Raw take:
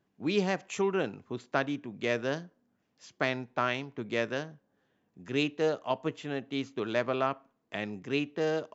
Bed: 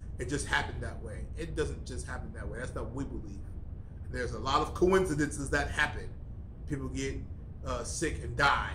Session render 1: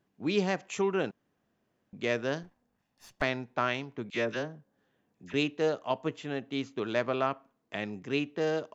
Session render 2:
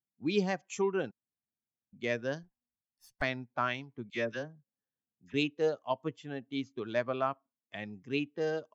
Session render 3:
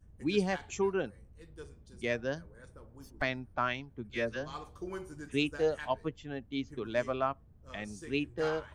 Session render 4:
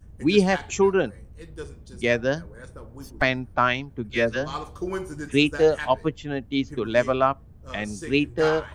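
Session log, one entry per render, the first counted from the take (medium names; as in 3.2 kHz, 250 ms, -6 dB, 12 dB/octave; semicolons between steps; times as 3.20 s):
1.11–1.93 s: room tone; 2.43–3.22 s: comb filter that takes the minimum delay 1.1 ms; 4.10–5.34 s: phase dispersion lows, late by 45 ms, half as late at 1.3 kHz
expander on every frequency bin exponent 1.5
add bed -15.5 dB
trim +11 dB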